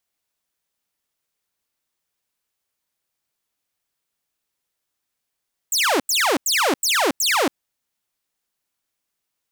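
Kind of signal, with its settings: burst of laser zaps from 8300 Hz, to 240 Hz, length 0.28 s saw, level -13.5 dB, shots 5, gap 0.09 s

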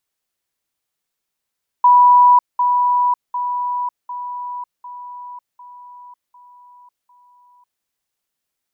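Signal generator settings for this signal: level ladder 982 Hz -6.5 dBFS, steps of -6 dB, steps 8, 0.55 s 0.20 s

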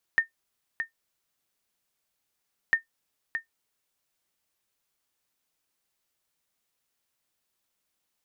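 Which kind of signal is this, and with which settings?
sonar ping 1820 Hz, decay 0.12 s, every 2.55 s, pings 2, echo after 0.62 s, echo -8.5 dB -12.5 dBFS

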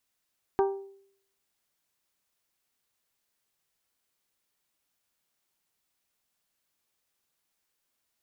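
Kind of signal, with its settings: glass hit bell, lowest mode 392 Hz, decay 0.65 s, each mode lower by 5 dB, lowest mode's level -19.5 dB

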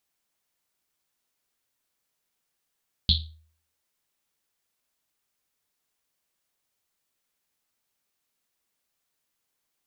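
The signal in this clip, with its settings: Risset drum, pitch 79 Hz, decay 0.53 s, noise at 3800 Hz, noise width 1100 Hz, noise 50%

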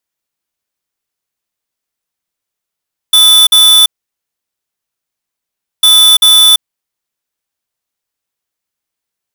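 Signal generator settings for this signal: beep pattern square 3490 Hz, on 0.34 s, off 0.05 s, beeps 2, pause 1.97 s, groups 2, -5 dBFS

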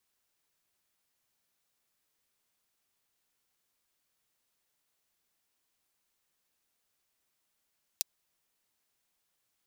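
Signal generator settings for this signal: closed hi-hat, high-pass 4300 Hz, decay 0.02 s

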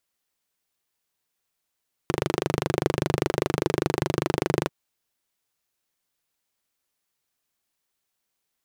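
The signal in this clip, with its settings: single-cylinder engine model, steady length 2.59 s, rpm 3000, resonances 150/350 Hz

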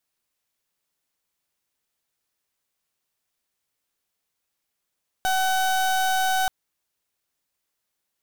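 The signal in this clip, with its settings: pulse 755 Hz, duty 31% -22 dBFS 1.23 s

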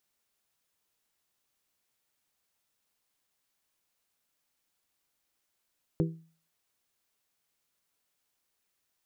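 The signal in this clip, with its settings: glass hit bell, lowest mode 163 Hz, modes 4, decay 0.42 s, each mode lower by 3 dB, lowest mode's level -22.5 dB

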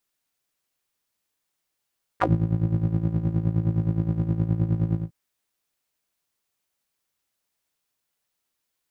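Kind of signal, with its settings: synth patch with tremolo A2, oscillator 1 square, sub -2 dB, filter bandpass, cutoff 160 Hz, Q 4.3, filter envelope 3.5 oct, filter decay 0.08 s, filter sustain 5%, attack 23 ms, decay 0.19 s, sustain -7.5 dB, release 0.17 s, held 2.74 s, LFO 9.6 Hz, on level 11 dB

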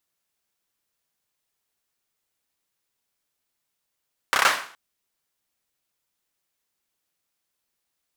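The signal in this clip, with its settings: hand clap length 0.42 s, bursts 5, apart 30 ms, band 1300 Hz, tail 0.46 s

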